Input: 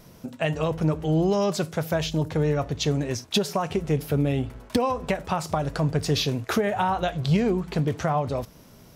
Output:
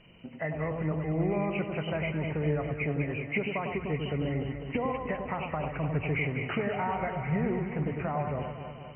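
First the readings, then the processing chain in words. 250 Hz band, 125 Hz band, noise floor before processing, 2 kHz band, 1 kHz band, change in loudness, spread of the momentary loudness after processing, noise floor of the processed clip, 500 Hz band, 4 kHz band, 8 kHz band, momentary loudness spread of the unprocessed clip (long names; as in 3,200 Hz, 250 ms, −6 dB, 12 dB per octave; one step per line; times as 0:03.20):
−6.0 dB, −6.0 dB, −50 dBFS, −0.5 dB, −6.5 dB, −6.0 dB, 4 LU, −44 dBFS, −6.5 dB, −14.5 dB, below −40 dB, 5 LU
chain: hearing-aid frequency compression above 1,800 Hz 4 to 1
delay that swaps between a low-pass and a high-pass 100 ms, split 1,200 Hz, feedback 79%, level −4.5 dB
level −8.5 dB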